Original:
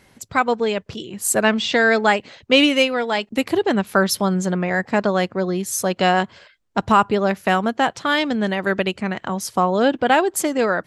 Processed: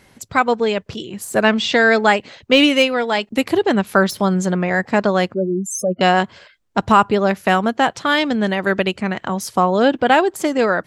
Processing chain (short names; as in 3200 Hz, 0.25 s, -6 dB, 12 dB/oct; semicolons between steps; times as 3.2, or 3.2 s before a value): 5.34–6.01 spectral contrast raised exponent 3.3; de-esser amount 45%; gain +2.5 dB